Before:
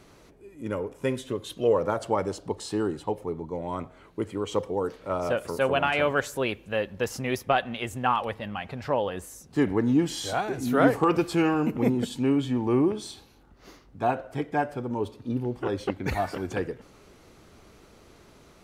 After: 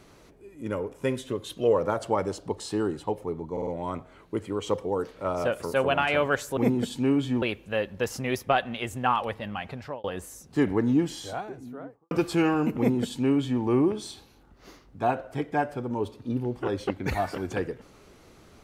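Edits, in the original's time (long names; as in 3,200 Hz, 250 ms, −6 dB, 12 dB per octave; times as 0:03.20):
0:03.52: stutter 0.05 s, 4 plays
0:08.70–0:09.04: fade out
0:09.72–0:11.11: fade out and dull
0:11.77–0:12.62: duplicate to 0:06.42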